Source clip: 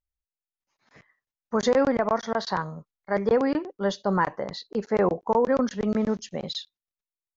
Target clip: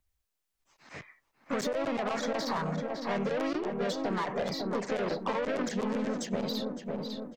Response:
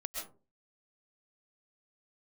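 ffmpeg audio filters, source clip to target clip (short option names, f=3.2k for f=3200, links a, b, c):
-filter_complex "[0:a]alimiter=limit=-17dB:level=0:latency=1:release=11,acompressor=threshold=-26dB:ratio=5,asoftclip=type=tanh:threshold=-31.5dB,asplit=2[a][b];[b]adelay=551,lowpass=f=1.3k:p=1,volume=-7dB,asplit=2[c][d];[d]adelay=551,lowpass=f=1.3k:p=1,volume=0.5,asplit=2[e][f];[f]adelay=551,lowpass=f=1.3k:p=1,volume=0.5,asplit=2[g][h];[h]adelay=551,lowpass=f=1.3k:p=1,volume=0.5,asplit=2[i][j];[j]adelay=551,lowpass=f=1.3k:p=1,volume=0.5,asplit=2[k][l];[l]adelay=551,lowpass=f=1.3k:p=1,volume=0.5[m];[c][e][g][i][k][m]amix=inputs=6:normalize=0[n];[a][n]amix=inputs=2:normalize=0,asplit=2[o][p];[p]asetrate=52444,aresample=44100,atempo=0.840896,volume=-4dB[q];[o][q]amix=inputs=2:normalize=0,acrossover=split=150|1800[r][s][t];[r]acompressor=threshold=-58dB:ratio=4[u];[s]acompressor=threshold=-38dB:ratio=4[v];[t]acompressor=threshold=-49dB:ratio=4[w];[u][v][w]amix=inputs=3:normalize=0,volume=8.5dB"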